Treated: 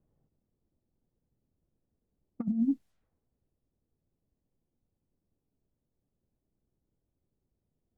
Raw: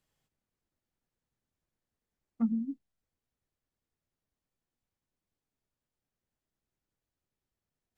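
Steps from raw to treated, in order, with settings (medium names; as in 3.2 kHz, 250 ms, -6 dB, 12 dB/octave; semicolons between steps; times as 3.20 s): compressor with a negative ratio -34 dBFS, ratio -0.5; level-controlled noise filter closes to 450 Hz, open at -38.5 dBFS; trim +6.5 dB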